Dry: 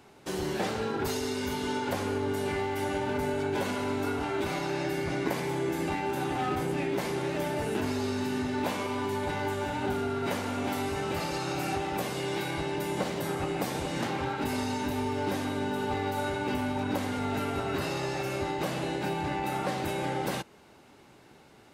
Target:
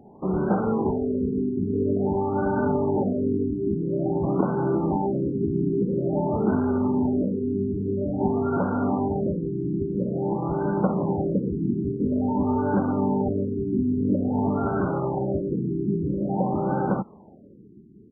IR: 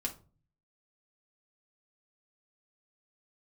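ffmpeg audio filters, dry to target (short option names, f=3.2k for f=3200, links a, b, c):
-af "atempo=1.2,equalizer=f=200:t=o:w=0.46:g=10,afftfilt=real='re*lt(b*sr/1024,410*pow(1600/410,0.5+0.5*sin(2*PI*0.49*pts/sr)))':imag='im*lt(b*sr/1024,410*pow(1600/410,0.5+0.5*sin(2*PI*0.49*pts/sr)))':win_size=1024:overlap=0.75,volume=6dB"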